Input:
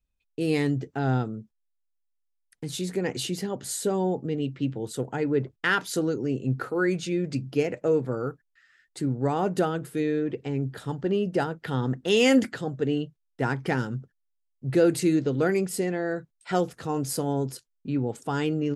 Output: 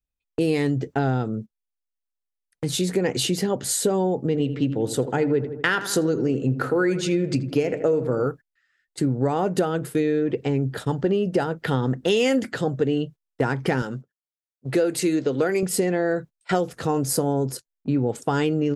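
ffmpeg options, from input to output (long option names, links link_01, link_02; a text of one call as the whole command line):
ffmpeg -i in.wav -filter_complex "[0:a]asettb=1/sr,asplit=3[link_01][link_02][link_03];[link_01]atrim=end=4.174[link_04];[link_02]atrim=start=4.17:end=8.26,asetpts=PTS-STARTPTS,afade=type=in:duration=0.004:curve=qsin,afade=type=out:start_time=4.086:duration=0.004:curve=qsin,asplit=2[link_05][link_06];[link_06]adelay=81,lowpass=frequency=2000:poles=1,volume=-12.5dB,asplit=2[link_07][link_08];[link_08]adelay=81,lowpass=frequency=2000:poles=1,volume=0.55,asplit=2[link_09][link_10];[link_10]adelay=81,lowpass=frequency=2000:poles=1,volume=0.55,asplit=2[link_11][link_12];[link_12]adelay=81,lowpass=frequency=2000:poles=1,volume=0.55,asplit=2[link_13][link_14];[link_14]adelay=81,lowpass=frequency=2000:poles=1,volume=0.55,asplit=2[link_15][link_16];[link_16]adelay=81,lowpass=frequency=2000:poles=1,volume=0.55[link_17];[link_05][link_07][link_09][link_11][link_13][link_15][link_17]amix=inputs=7:normalize=0,atrim=end_sample=180369[link_18];[link_03]atrim=start=8.256[link_19];[link_04][link_18]acrossfade=duration=0.004:curve1=hsin:curve2=qsin[link_20];[link_20][link_19]acrossfade=duration=0.004:curve1=qsin:curve2=hsin,asettb=1/sr,asplit=3[link_21][link_22][link_23];[link_21]atrim=end=13.824[link_24];[link_22]atrim=start=13.82:end=15.63,asetpts=PTS-STARTPTS,afade=type=in:duration=0.004:curve=qsin,afade=type=out:start_time=1.806:duration=0.004:curve=qsin,highpass=frequency=360:poles=1[link_25];[link_23]atrim=start=15.626[link_26];[link_24][link_25]acrossfade=duration=0.004:curve1=hsin:curve2=qsin[link_27];[link_27][link_26]acrossfade=duration=0.004:curve1=qsin:curve2=hsin,asettb=1/sr,asplit=3[link_28][link_29][link_30];[link_28]atrim=end=17.034[link_31];[link_29]atrim=start=17.03:end=17.97,asetpts=PTS-STARTPTS,afade=type=in:duration=0.004:curve=qsin,afade=type=out:start_time=0.936:duration=0.004:curve=qsin,equalizer=frequency=3000:width=1.2:gain=-5.5[link_32];[link_30]atrim=start=17.966[link_33];[link_31][link_32]acrossfade=duration=0.004:curve1=hsin:curve2=qsin[link_34];[link_34][link_33]acrossfade=duration=0.004:curve1=qsin:curve2=hsin,equalizer=frequency=530:width_type=o:width=0.73:gain=3,agate=range=-16dB:threshold=-41dB:ratio=16:detection=peak,acompressor=threshold=-26dB:ratio=6,volume=8dB" out.wav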